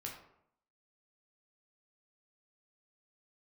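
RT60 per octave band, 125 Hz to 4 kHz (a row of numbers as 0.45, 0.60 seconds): 0.75, 0.75, 0.75, 0.70, 0.55, 0.40 seconds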